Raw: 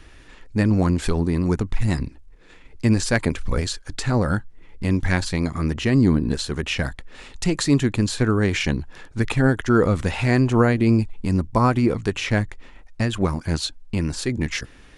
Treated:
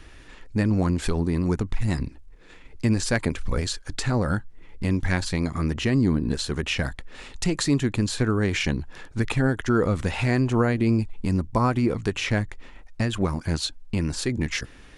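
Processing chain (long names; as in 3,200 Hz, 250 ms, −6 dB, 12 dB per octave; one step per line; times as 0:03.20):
downward compressor 1.5 to 1, threshold −24 dBFS, peak gain reduction 5 dB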